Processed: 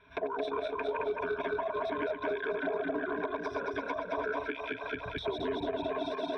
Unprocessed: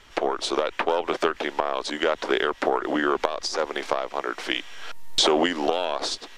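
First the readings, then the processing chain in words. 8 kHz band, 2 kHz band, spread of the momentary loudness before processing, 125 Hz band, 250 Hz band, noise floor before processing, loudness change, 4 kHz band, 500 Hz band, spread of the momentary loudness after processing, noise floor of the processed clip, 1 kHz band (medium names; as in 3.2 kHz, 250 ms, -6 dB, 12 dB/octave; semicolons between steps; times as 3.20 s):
under -30 dB, -8.0 dB, 7 LU, -2.0 dB, -9.0 dB, -47 dBFS, -9.5 dB, -18.5 dB, -7.0 dB, 3 LU, -43 dBFS, -9.5 dB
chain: backward echo that repeats 110 ms, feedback 85%, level -2 dB; recorder AGC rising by 24 dB/s; high-pass 61 Hz; reverb removal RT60 1.9 s; rippled EQ curve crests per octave 1.6, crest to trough 18 dB; transient shaper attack +5 dB, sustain 0 dB; peak limiter -6.5 dBFS, peak gain reduction 9.5 dB; compression, threshold -18 dBFS, peak gain reduction 7 dB; saturation -13 dBFS, distortion -20 dB; distance through air 450 m; trim -8.5 dB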